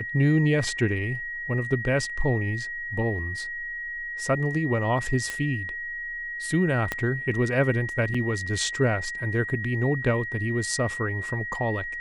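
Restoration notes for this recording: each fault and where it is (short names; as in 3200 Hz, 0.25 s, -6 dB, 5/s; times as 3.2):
tone 1900 Hz -31 dBFS
5.3 pop -15 dBFS
6.92 pop -12 dBFS
8.14 gap 4.8 ms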